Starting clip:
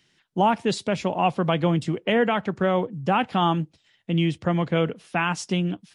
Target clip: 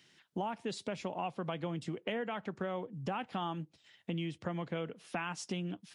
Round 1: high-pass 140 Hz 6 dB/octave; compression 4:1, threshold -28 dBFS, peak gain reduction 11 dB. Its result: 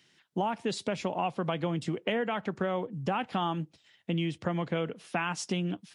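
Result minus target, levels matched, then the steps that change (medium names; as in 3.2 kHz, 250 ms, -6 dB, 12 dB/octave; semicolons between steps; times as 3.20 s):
compression: peak gain reduction -6.5 dB
change: compression 4:1, threshold -37 dBFS, peak gain reduction 18 dB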